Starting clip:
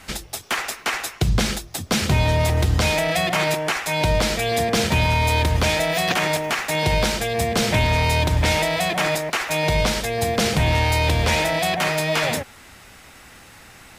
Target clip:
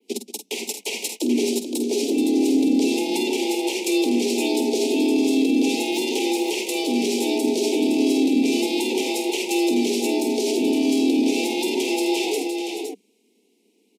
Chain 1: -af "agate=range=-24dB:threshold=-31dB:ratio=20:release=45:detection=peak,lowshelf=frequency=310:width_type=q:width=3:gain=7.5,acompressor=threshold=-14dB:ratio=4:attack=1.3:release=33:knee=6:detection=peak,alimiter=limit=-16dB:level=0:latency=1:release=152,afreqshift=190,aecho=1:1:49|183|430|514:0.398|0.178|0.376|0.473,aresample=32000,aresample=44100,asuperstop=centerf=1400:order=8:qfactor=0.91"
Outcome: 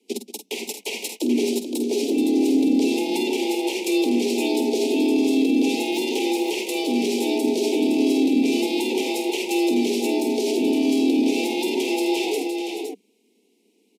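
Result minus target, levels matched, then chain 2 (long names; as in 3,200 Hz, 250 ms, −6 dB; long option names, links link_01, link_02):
8,000 Hz band −3.5 dB
-af "agate=range=-24dB:threshold=-31dB:ratio=20:release=45:detection=peak,lowshelf=frequency=310:width_type=q:width=3:gain=7.5,acompressor=threshold=-14dB:ratio=4:attack=1.3:release=33:knee=6:detection=peak,alimiter=limit=-16dB:level=0:latency=1:release=152,afreqshift=190,aecho=1:1:49|183|430|514:0.398|0.178|0.376|0.473,aresample=32000,aresample=44100,asuperstop=centerf=1400:order=8:qfactor=0.91,adynamicequalizer=threshold=0.00708:dfrequency=7300:dqfactor=0.76:tfrequency=7300:tqfactor=0.76:attack=5:release=100:ratio=0.45:range=2:mode=boostabove:tftype=bell"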